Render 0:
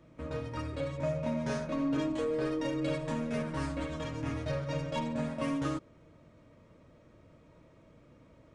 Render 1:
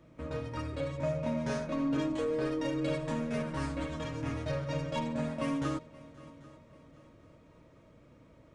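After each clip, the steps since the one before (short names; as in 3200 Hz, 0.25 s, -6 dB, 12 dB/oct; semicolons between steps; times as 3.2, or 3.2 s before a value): multi-head echo 0.263 s, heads second and third, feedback 44%, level -22 dB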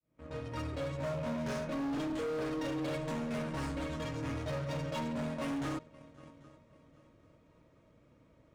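opening faded in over 0.58 s; overloaded stage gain 32.5 dB; added harmonics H 7 -23 dB, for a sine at -32 dBFS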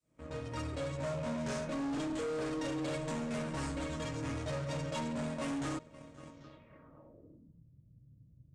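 in parallel at -1 dB: compressor, threshold -45 dBFS, peak gain reduction 10 dB; on the sum: low-pass sweep 8300 Hz -> 130 Hz, 6.28–7.63; gain -3 dB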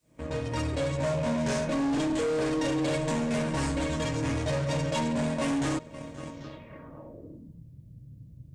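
notch 1300 Hz, Q 7.4; in parallel at -0.5 dB: compressor, threshold -46 dBFS, peak gain reduction 10.5 dB; on the sum: gain +6.5 dB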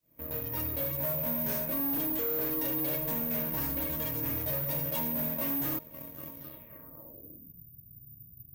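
careless resampling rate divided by 3×, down filtered, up zero stuff; gain -8.5 dB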